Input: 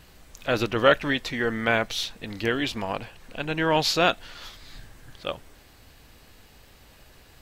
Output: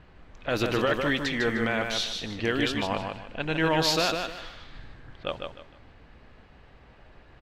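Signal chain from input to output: low-pass opened by the level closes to 1900 Hz, open at -21 dBFS; limiter -15 dBFS, peak gain reduction 11.5 dB; on a send: feedback echo 0.152 s, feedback 28%, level -5 dB

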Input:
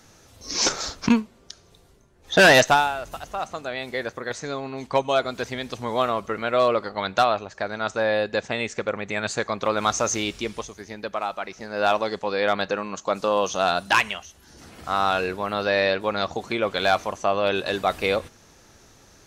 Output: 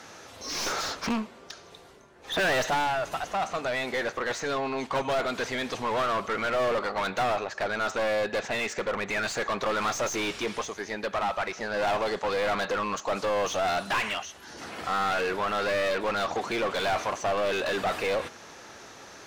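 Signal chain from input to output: one-sided clip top -28 dBFS; overdrive pedal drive 26 dB, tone 2300 Hz, clips at -11.5 dBFS; gain -7.5 dB

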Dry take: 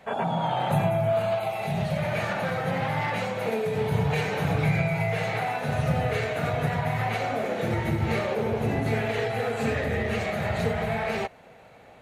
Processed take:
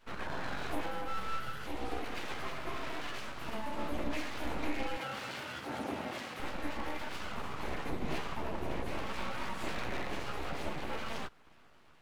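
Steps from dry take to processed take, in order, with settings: chorus voices 2, 0.26 Hz, delay 14 ms, depth 1.1 ms; full-wave rectifier; 4.97–6.4 HPF 95 Hz 24 dB/oct; gain -6 dB

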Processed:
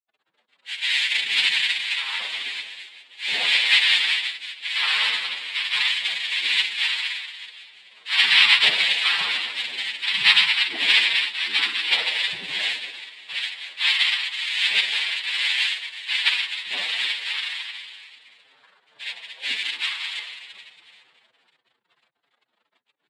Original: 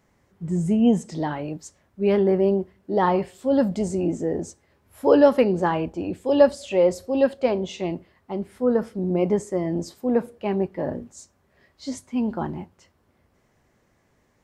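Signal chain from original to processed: reverb RT60 1.1 s, pre-delay 6 ms, DRR -1 dB; bit-crush 9-bit; bell 2100 Hz +5 dB 0.77 oct; inverted band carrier 3000 Hz; noise vocoder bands 6; low shelf 140 Hz -12 dB; time stretch by phase-locked vocoder 1.6×; gain -4 dB

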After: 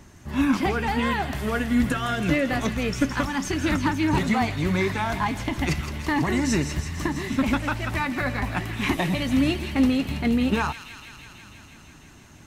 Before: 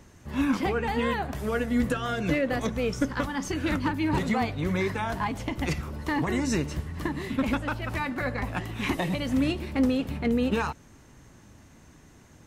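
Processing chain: bell 490 Hz -10 dB 0.21 oct; on a send: thin delay 0.164 s, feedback 79%, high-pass 2200 Hz, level -8 dB; on the sum: gain +4 dB

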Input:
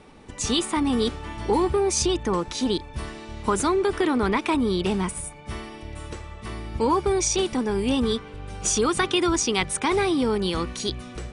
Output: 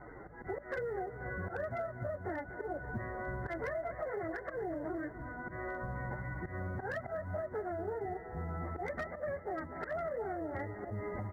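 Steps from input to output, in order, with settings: pitch shift by moving bins +9 st; Chebyshev low-pass 2100 Hz, order 10; auto swell 0.224 s; compressor 16:1, threshold -40 dBFS, peak gain reduction 19.5 dB; hum 60 Hz, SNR 22 dB; short-mantissa float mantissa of 6-bit; on a send: feedback echo 0.244 s, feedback 60%, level -13.5 dB; on the sum: slew limiter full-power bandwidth 16 Hz; gain +4.5 dB

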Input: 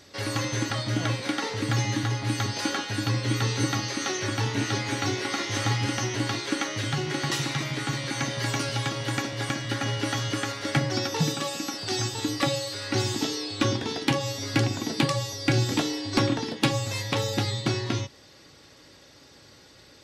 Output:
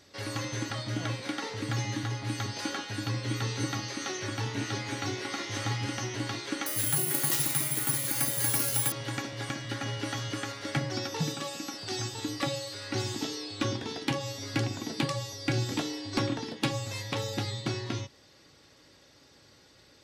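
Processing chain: 6.66–8.92 careless resampling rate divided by 4×, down none, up zero stuff; gain -6 dB

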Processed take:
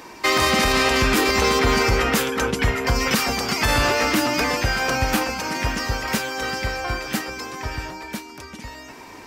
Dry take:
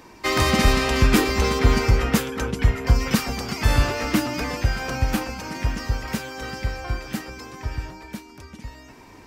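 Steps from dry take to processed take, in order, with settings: low shelf 210 Hz -12 dB; limiter -17 dBFS, peak gain reduction 9 dB; gain +8 dB

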